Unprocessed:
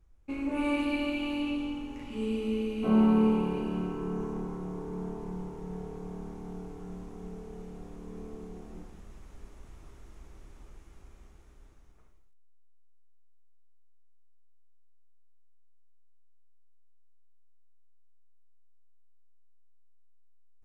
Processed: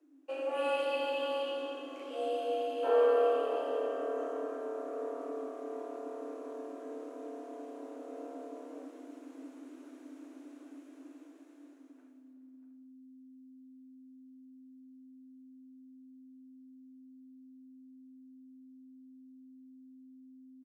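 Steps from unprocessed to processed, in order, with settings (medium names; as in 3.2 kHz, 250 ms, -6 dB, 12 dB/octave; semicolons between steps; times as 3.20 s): frequency shift +260 Hz; echo from a far wall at 110 m, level -11 dB; trim -3 dB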